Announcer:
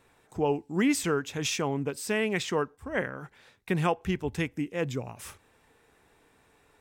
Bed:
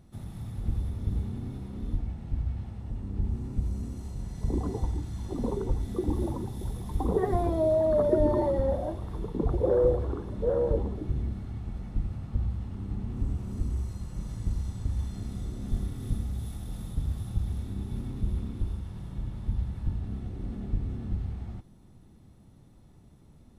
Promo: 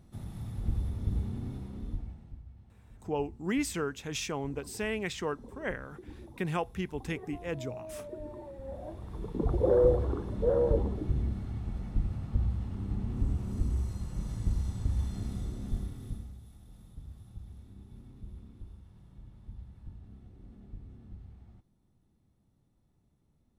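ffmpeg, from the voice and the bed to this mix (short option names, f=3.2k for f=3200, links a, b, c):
-filter_complex "[0:a]adelay=2700,volume=-5.5dB[a];[1:a]volume=17.5dB,afade=t=out:st=1.52:d=0.89:silence=0.133352,afade=t=in:st=8.59:d=1.14:silence=0.112202,afade=t=out:st=15.27:d=1.13:silence=0.158489[b];[a][b]amix=inputs=2:normalize=0"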